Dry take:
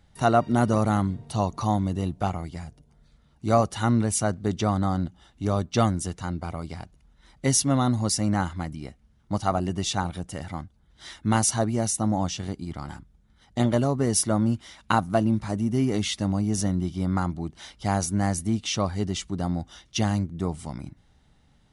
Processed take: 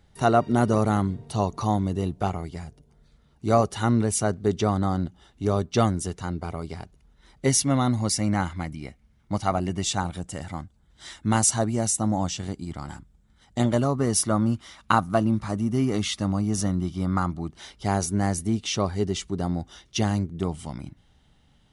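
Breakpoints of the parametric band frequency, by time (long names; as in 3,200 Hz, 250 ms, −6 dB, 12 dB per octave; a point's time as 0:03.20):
parametric band +7.5 dB 0.28 octaves
410 Hz
from 0:07.49 2,200 Hz
from 0:09.82 7,700 Hz
from 0:13.80 1,200 Hz
from 0:17.55 400 Hz
from 0:20.43 3,100 Hz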